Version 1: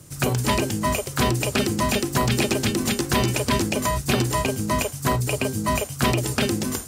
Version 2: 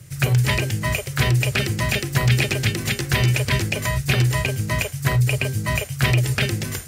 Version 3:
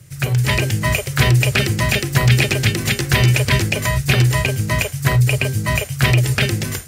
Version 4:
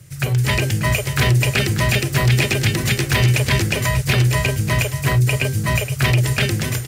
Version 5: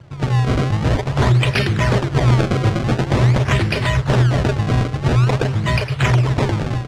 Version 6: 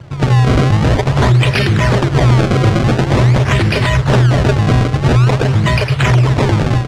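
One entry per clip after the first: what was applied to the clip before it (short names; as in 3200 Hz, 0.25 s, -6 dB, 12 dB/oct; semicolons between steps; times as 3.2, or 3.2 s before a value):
ten-band EQ 125 Hz +10 dB, 250 Hz -11 dB, 1000 Hz -7 dB, 2000 Hz +8 dB, 8000 Hz -3 dB
AGC; gain -1 dB
soft clip -8.5 dBFS, distortion -18 dB; echo 0.589 s -11 dB
decimation with a swept rate 28×, swing 160% 0.47 Hz; air absorption 86 m; gain +1.5 dB
limiter -13 dBFS, peak gain reduction 6 dB; gain +8 dB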